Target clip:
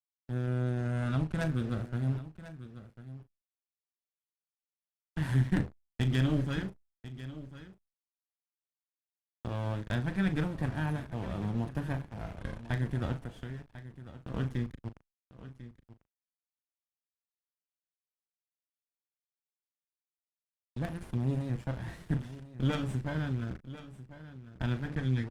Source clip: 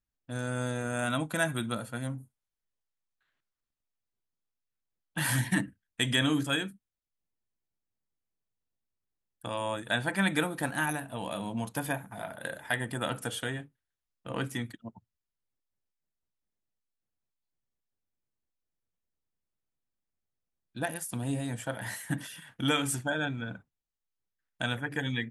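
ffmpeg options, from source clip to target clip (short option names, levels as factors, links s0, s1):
-filter_complex "[0:a]acrusher=bits=4:dc=4:mix=0:aa=0.000001,highpass=f=150:p=1,acrusher=bits=4:mode=log:mix=0:aa=0.000001,aemphasis=mode=reproduction:type=riaa,asplit=3[s0][s1][s2];[s0]afade=t=out:st=13.17:d=0.02[s3];[s1]acompressor=threshold=0.0158:ratio=6,afade=t=in:st=13.17:d=0.02,afade=t=out:st=14.32:d=0.02[s4];[s2]afade=t=in:st=14.32:d=0.02[s5];[s3][s4][s5]amix=inputs=3:normalize=0,lowshelf=f=240:g=7.5,asplit=2[s6][s7];[s7]adelay=38,volume=0.251[s8];[s6][s8]amix=inputs=2:normalize=0,aecho=1:1:1046:0.178,volume=0.562" -ar 48000 -c:a libopus -b:a 32k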